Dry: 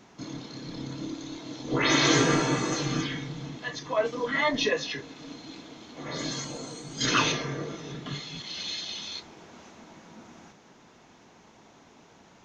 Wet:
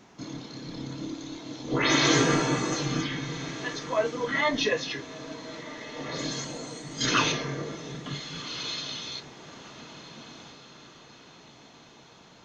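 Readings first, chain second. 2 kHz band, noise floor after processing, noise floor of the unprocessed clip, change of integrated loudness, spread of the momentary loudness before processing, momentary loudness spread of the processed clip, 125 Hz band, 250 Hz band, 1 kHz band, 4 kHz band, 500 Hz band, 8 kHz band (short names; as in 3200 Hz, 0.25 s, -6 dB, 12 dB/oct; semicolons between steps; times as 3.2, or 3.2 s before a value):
0.0 dB, -53 dBFS, -56 dBFS, 0.0 dB, 18 LU, 21 LU, 0.0 dB, 0.0 dB, 0.0 dB, 0.0 dB, 0.0 dB, 0.0 dB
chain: diffused feedback echo 1.437 s, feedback 48%, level -15 dB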